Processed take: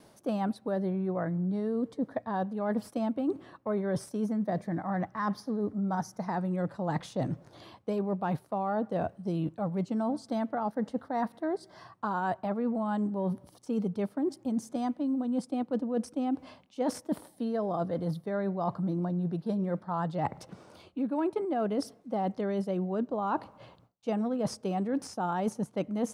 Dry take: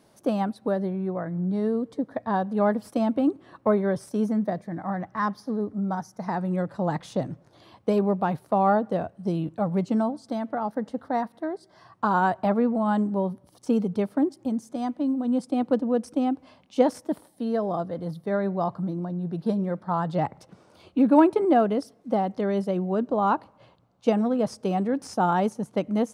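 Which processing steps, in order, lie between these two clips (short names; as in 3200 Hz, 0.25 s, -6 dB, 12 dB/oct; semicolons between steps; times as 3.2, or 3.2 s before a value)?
gate with hold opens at -53 dBFS; reverse; compressor 12:1, threshold -30 dBFS, peak gain reduction 18 dB; reverse; gain +3 dB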